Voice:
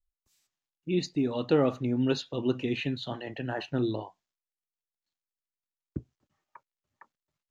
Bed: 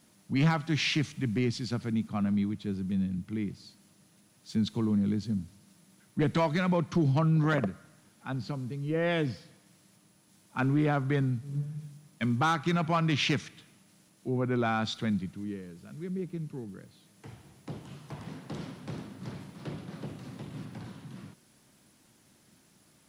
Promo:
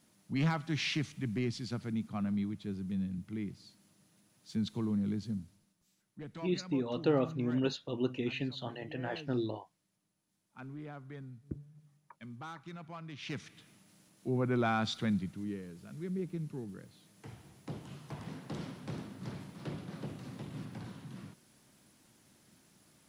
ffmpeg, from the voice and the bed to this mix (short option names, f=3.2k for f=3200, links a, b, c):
-filter_complex "[0:a]adelay=5550,volume=-5dB[a];[1:a]volume=11.5dB,afade=t=out:st=5.3:d=0.46:silence=0.211349,afade=t=in:st=13.21:d=0.53:silence=0.141254[b];[a][b]amix=inputs=2:normalize=0"